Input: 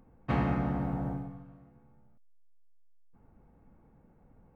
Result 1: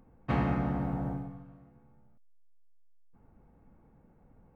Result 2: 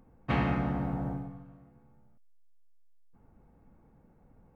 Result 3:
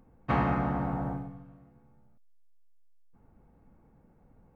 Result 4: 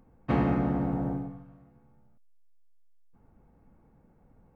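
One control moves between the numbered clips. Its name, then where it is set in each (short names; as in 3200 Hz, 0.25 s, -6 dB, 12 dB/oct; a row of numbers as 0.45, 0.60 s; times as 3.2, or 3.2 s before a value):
dynamic EQ, frequency: 9700, 2900, 1100, 350 Hz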